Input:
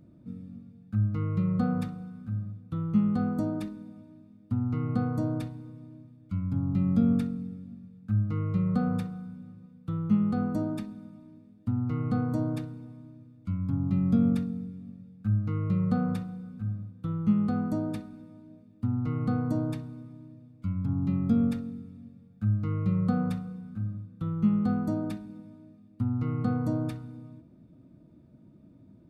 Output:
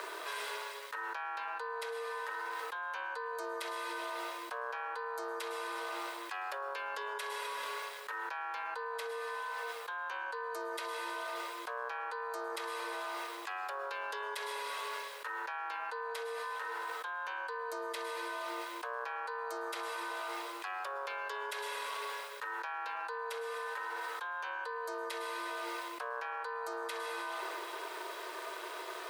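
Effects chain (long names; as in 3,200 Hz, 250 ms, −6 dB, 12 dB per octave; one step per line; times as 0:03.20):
Butterworth high-pass 700 Hz 96 dB per octave
ring modulation 280 Hz
convolution reverb RT60 1.5 s, pre-delay 103 ms, DRR 13.5 dB
envelope flattener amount 100%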